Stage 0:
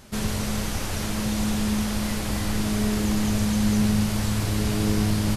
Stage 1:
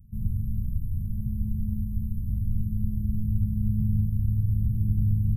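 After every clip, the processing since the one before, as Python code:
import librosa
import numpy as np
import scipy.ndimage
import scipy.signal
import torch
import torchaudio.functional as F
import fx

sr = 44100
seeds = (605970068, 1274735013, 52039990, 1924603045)

y = scipy.signal.sosfilt(scipy.signal.cheby2(4, 80, [780.0, 5400.0], 'bandstop', fs=sr, output='sos'), x)
y = y * librosa.db_to_amplitude(2.5)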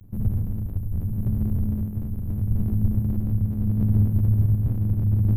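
y = fx.lower_of_two(x, sr, delay_ms=9.9)
y = y * (1.0 - 0.38 / 2.0 + 0.38 / 2.0 * np.cos(2.0 * np.pi * 0.71 * (np.arange(len(y)) / sr)))
y = y * librosa.db_to_amplitude(6.5)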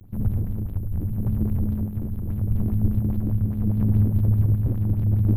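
y = fx.bell_lfo(x, sr, hz=4.9, low_hz=300.0, high_hz=4100.0, db=11)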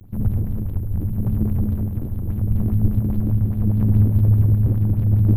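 y = x + 10.0 ** (-11.0 / 20.0) * np.pad(x, (int(324 * sr / 1000.0), 0))[:len(x)]
y = y * librosa.db_to_amplitude(3.0)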